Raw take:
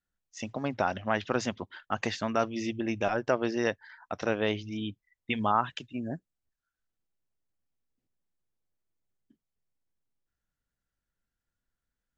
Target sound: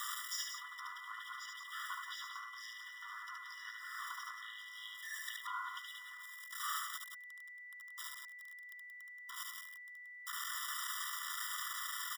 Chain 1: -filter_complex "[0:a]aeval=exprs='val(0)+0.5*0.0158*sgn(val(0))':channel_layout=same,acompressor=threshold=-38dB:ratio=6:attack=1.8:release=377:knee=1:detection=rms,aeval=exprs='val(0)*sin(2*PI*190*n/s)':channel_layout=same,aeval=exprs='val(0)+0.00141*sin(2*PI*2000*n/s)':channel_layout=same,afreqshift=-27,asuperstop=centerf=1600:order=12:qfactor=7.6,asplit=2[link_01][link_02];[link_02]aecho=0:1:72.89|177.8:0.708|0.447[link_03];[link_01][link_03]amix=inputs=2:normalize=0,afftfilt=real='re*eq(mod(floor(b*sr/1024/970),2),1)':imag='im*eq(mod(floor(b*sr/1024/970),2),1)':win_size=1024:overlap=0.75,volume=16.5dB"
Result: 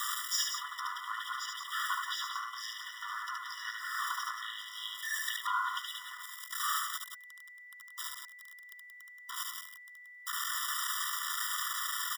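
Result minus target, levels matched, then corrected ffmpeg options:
downward compressor: peak gain reduction −10 dB
-filter_complex "[0:a]aeval=exprs='val(0)+0.5*0.0158*sgn(val(0))':channel_layout=same,acompressor=threshold=-50dB:ratio=6:attack=1.8:release=377:knee=1:detection=rms,aeval=exprs='val(0)*sin(2*PI*190*n/s)':channel_layout=same,aeval=exprs='val(0)+0.00141*sin(2*PI*2000*n/s)':channel_layout=same,afreqshift=-27,asuperstop=centerf=1600:order=12:qfactor=7.6,asplit=2[link_01][link_02];[link_02]aecho=0:1:72.89|177.8:0.708|0.447[link_03];[link_01][link_03]amix=inputs=2:normalize=0,afftfilt=real='re*eq(mod(floor(b*sr/1024/970),2),1)':imag='im*eq(mod(floor(b*sr/1024/970),2),1)':win_size=1024:overlap=0.75,volume=16.5dB"

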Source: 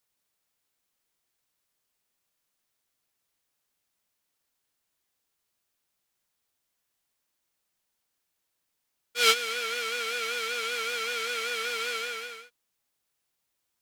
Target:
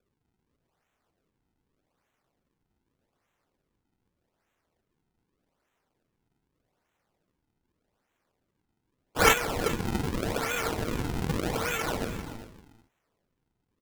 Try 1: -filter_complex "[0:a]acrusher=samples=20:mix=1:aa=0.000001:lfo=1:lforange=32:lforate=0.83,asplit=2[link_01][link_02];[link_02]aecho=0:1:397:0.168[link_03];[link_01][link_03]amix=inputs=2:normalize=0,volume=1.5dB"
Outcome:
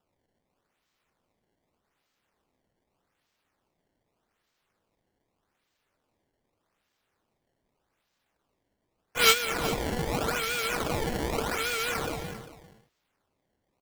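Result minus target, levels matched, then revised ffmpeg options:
sample-and-hold swept by an LFO: distortion −11 dB
-filter_complex "[0:a]acrusher=samples=44:mix=1:aa=0.000001:lfo=1:lforange=70.4:lforate=0.83,asplit=2[link_01][link_02];[link_02]aecho=0:1:397:0.168[link_03];[link_01][link_03]amix=inputs=2:normalize=0,volume=1.5dB"

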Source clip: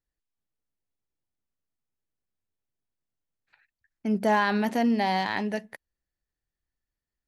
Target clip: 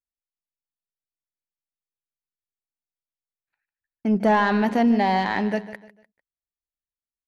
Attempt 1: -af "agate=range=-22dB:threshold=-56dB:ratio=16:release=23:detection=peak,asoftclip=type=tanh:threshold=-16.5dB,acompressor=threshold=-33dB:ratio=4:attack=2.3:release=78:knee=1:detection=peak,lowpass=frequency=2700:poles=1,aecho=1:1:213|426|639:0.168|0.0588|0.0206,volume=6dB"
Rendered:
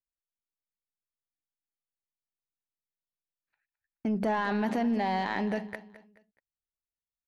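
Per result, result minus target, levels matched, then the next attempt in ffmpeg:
downward compressor: peak gain reduction +10.5 dB; echo 64 ms late
-af "agate=range=-22dB:threshold=-56dB:ratio=16:release=23:detection=peak,asoftclip=type=tanh:threshold=-16.5dB,lowpass=frequency=2700:poles=1,aecho=1:1:213|426|639:0.168|0.0588|0.0206,volume=6dB"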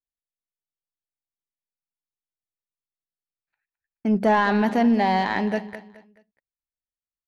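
echo 64 ms late
-af "agate=range=-22dB:threshold=-56dB:ratio=16:release=23:detection=peak,asoftclip=type=tanh:threshold=-16.5dB,lowpass=frequency=2700:poles=1,aecho=1:1:149|298|447:0.168|0.0588|0.0206,volume=6dB"

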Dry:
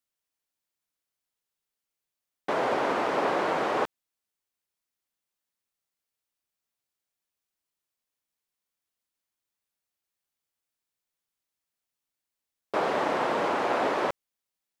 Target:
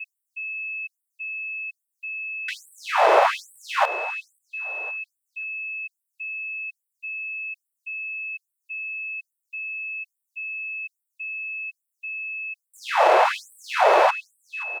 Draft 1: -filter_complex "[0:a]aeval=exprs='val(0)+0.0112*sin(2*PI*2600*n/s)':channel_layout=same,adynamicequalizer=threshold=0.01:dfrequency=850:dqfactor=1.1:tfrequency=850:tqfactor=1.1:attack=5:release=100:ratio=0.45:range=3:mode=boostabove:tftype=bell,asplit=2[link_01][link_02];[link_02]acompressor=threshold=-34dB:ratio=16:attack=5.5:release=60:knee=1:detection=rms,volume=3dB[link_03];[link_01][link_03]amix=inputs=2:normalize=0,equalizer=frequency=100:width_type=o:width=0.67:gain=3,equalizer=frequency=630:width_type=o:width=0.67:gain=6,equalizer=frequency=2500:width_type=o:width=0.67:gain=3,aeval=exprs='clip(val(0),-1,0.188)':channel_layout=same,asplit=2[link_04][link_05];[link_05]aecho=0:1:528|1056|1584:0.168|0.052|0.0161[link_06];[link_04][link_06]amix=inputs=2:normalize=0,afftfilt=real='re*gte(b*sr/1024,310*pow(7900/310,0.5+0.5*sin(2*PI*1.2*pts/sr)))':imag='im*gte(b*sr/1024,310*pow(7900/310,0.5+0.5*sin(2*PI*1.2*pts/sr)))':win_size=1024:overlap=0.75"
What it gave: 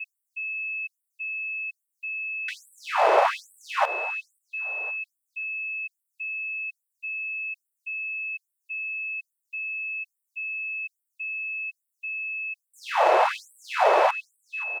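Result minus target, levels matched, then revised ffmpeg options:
downward compressor: peak gain reduction +11 dB
-filter_complex "[0:a]aeval=exprs='val(0)+0.0112*sin(2*PI*2600*n/s)':channel_layout=same,adynamicequalizer=threshold=0.01:dfrequency=850:dqfactor=1.1:tfrequency=850:tqfactor=1.1:attack=5:release=100:ratio=0.45:range=3:mode=boostabove:tftype=bell,asplit=2[link_01][link_02];[link_02]acompressor=threshold=-22.5dB:ratio=16:attack=5.5:release=60:knee=1:detection=rms,volume=3dB[link_03];[link_01][link_03]amix=inputs=2:normalize=0,equalizer=frequency=100:width_type=o:width=0.67:gain=3,equalizer=frequency=630:width_type=o:width=0.67:gain=6,equalizer=frequency=2500:width_type=o:width=0.67:gain=3,aeval=exprs='clip(val(0),-1,0.188)':channel_layout=same,asplit=2[link_04][link_05];[link_05]aecho=0:1:528|1056|1584:0.168|0.052|0.0161[link_06];[link_04][link_06]amix=inputs=2:normalize=0,afftfilt=real='re*gte(b*sr/1024,310*pow(7900/310,0.5+0.5*sin(2*PI*1.2*pts/sr)))':imag='im*gte(b*sr/1024,310*pow(7900/310,0.5+0.5*sin(2*PI*1.2*pts/sr)))':win_size=1024:overlap=0.75"

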